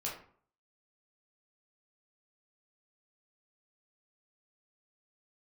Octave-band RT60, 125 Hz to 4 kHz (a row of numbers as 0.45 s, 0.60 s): 0.55 s, 0.55 s, 0.50 s, 0.50 s, 0.40 s, 0.30 s